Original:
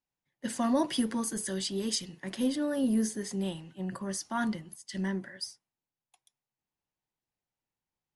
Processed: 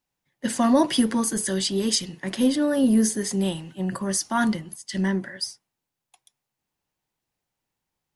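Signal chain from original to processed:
0:03.04–0:04.57: high-shelf EQ 7,000 Hz +5.5 dB
level +8.5 dB

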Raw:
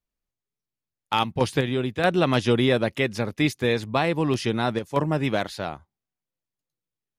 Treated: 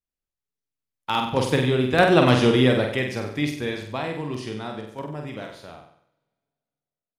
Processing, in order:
source passing by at 0:02.05, 11 m/s, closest 6.2 metres
flutter between parallel walls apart 8.1 metres, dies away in 0.6 s
coupled-rooms reverb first 0.89 s, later 2.5 s, from −17 dB, DRR 18 dB
level +3.5 dB

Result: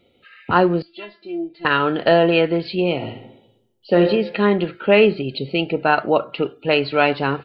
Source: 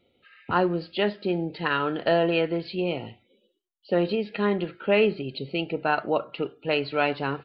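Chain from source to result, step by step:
0:00.82–0:01.65: tuned comb filter 340 Hz, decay 0.2 s, harmonics all, mix 100%
0:02.95–0:04.01: thrown reverb, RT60 0.82 s, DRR 4 dB
level +7.5 dB

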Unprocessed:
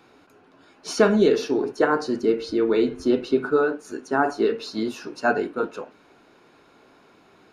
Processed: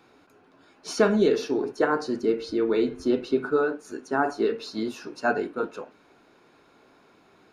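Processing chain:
notch filter 2,900 Hz, Q 29
level −3 dB

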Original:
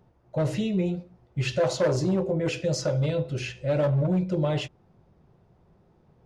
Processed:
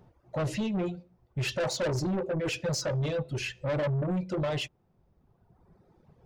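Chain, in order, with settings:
reverb reduction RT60 1.4 s
soft clipping −28.5 dBFS, distortion −9 dB
level +2.5 dB

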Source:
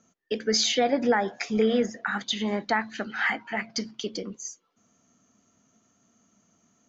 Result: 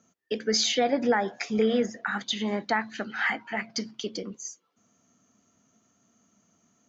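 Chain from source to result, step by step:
high-pass filter 49 Hz
level −1 dB

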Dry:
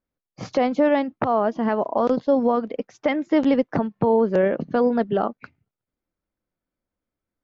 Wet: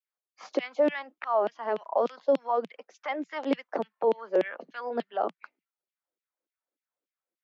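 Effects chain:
auto-filter high-pass saw down 3.4 Hz 300–3,100 Hz
Butterworth high-pass 170 Hz 72 dB per octave
level −8.5 dB

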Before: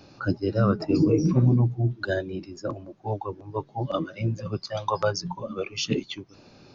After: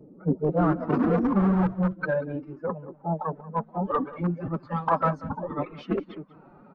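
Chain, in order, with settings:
low-pass that shuts in the quiet parts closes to 2,300 Hz, open at −17.5 dBFS
in parallel at −10 dB: wrap-around overflow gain 17.5 dB
on the sum: low-pass filter sweep 390 Hz → 1,200 Hz, 0:00.22–0:00.76
phase-vocoder pitch shift with formants kept +7.5 semitones
slap from a distant wall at 32 metres, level −18 dB
level −2.5 dB

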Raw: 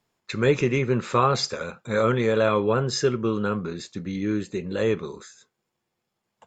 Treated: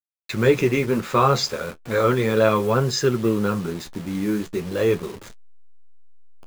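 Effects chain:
hold until the input has moved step −36.5 dBFS
flanger 0.35 Hz, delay 7 ms, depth 7.8 ms, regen −34%
level +6.5 dB

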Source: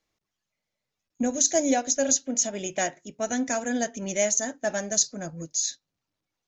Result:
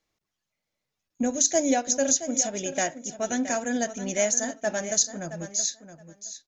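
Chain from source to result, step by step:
repeating echo 671 ms, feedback 16%, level −12 dB

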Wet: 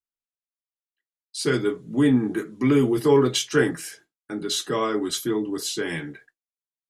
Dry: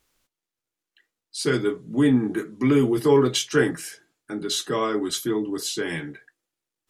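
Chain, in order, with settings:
downward expander −46 dBFS

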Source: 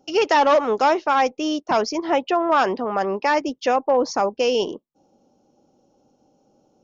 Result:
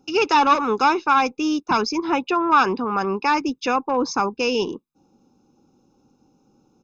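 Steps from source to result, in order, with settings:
comb filter 0.8 ms, depth 81%

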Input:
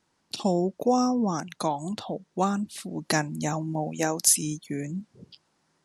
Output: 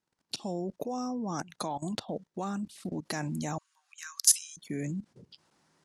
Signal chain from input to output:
output level in coarse steps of 18 dB
harmonic generator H 6 −43 dB, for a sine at −8 dBFS
0:03.58–0:04.57: Chebyshev high-pass with heavy ripple 1,100 Hz, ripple 3 dB
level +2.5 dB

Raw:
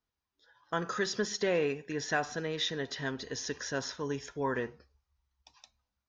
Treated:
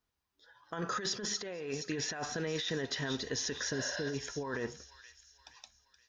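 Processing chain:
healed spectral selection 0:03.76–0:04.11, 500–5,400 Hz before
delay with a high-pass on its return 473 ms, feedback 44%, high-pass 3,400 Hz, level −9 dB
compressor whose output falls as the input rises −36 dBFS, ratio −1

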